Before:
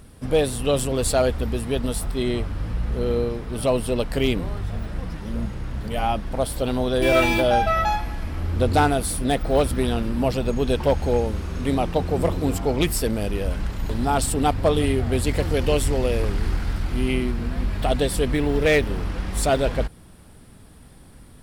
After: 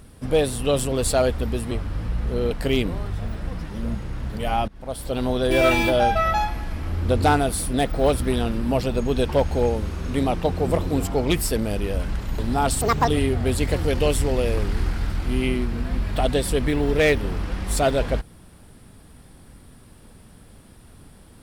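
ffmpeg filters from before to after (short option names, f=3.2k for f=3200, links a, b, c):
-filter_complex "[0:a]asplit=6[a][b][c][d][e][f];[a]atrim=end=1.712[g];[b]atrim=start=2.358:end=3.162[h];[c]atrim=start=4.018:end=6.19,asetpts=PTS-STARTPTS,afade=t=out:st=2.168:d=0.004:c=hsin:silence=0.0841395[i];[d]atrim=start=6.19:end=14.324,asetpts=PTS-STARTPTS,afade=t=in:d=0.58:silence=0.0841395[j];[e]atrim=start=14.32:end=14.74,asetpts=PTS-STARTPTS,asetrate=69237,aresample=44100,atrim=end_sample=11797,asetpts=PTS-STARTPTS[k];[f]atrim=start=14.736[l];[g][h]acrossfade=d=0.004:c1=hsin:c2=hsin[m];[i][j]concat=n=2:v=0:a=1[n];[m][n]acrossfade=d=0.004:c1=hsin:c2=hsin[o];[o][k]acrossfade=d=0.004:c1=hsin:c2=hsin[p];[p][l]acrossfade=d=0.004:c1=hsin:c2=hsin"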